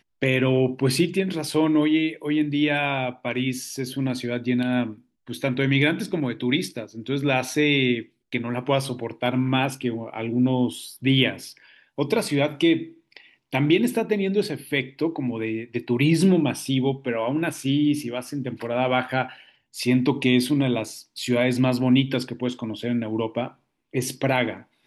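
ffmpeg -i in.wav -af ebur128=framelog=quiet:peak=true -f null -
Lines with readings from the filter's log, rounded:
Integrated loudness:
  I:         -23.6 LUFS
  Threshold: -33.9 LUFS
Loudness range:
  LRA:         2.5 LU
  Threshold: -43.9 LUFS
  LRA low:   -25.1 LUFS
  LRA high:  -22.7 LUFS
True peak:
  Peak:       -7.2 dBFS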